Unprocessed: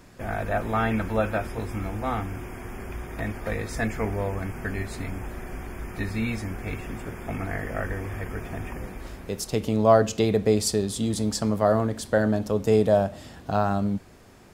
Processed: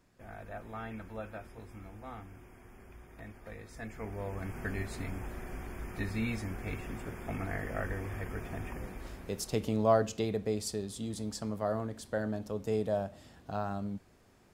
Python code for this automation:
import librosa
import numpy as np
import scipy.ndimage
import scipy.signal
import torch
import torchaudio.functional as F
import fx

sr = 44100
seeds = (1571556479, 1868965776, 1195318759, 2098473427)

y = fx.gain(x, sr, db=fx.line((3.75, -17.5), (4.58, -6.0), (9.57, -6.0), (10.49, -12.0)))